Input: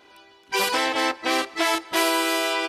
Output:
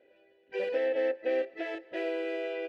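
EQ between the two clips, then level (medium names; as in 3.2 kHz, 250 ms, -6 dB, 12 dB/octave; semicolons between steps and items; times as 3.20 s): vowel filter e; tilt EQ -4 dB/octave; 0.0 dB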